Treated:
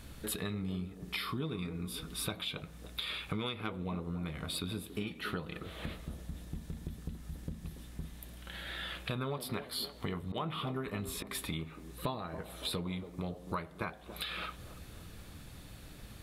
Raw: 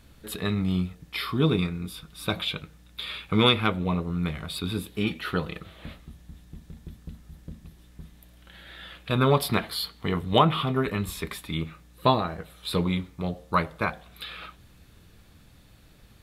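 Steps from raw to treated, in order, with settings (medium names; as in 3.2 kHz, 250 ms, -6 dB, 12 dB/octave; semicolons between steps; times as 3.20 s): 10.22–11.35 s: slow attack 179 ms; compression 6:1, threshold -40 dBFS, peak gain reduction 23 dB; peaking EQ 9.8 kHz +3.5 dB 0.66 oct; feedback echo behind a band-pass 282 ms, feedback 52%, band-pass 420 Hz, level -8.5 dB; trim +4 dB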